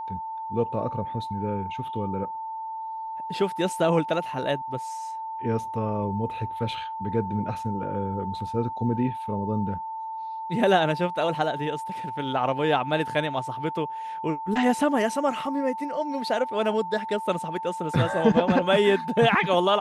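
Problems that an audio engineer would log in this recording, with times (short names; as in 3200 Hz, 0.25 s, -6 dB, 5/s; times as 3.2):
tone 890 Hz -31 dBFS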